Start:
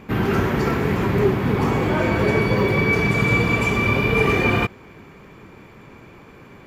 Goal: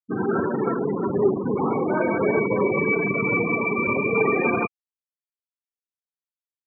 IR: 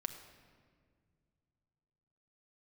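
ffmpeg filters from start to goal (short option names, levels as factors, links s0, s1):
-filter_complex "[0:a]acrossover=split=190 2800:gain=0.112 1 0.0708[s0][s1][s2];[s0][s1][s2]amix=inputs=3:normalize=0,afftfilt=real='re*gte(hypot(re,im),0.126)':imag='im*gte(hypot(re,im),0.126)':win_size=1024:overlap=0.75"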